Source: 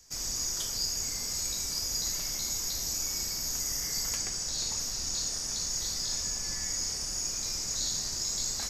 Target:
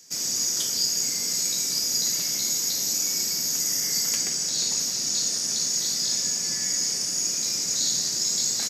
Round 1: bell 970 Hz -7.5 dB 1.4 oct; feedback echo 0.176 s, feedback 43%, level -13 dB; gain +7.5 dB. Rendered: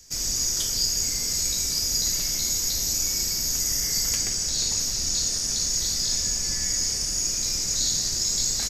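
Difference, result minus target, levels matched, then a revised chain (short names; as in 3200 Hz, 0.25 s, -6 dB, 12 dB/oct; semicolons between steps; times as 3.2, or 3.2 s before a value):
125 Hz band +8.0 dB
HPF 150 Hz 24 dB/oct; bell 970 Hz -7.5 dB 1.4 oct; feedback echo 0.176 s, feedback 43%, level -13 dB; gain +7.5 dB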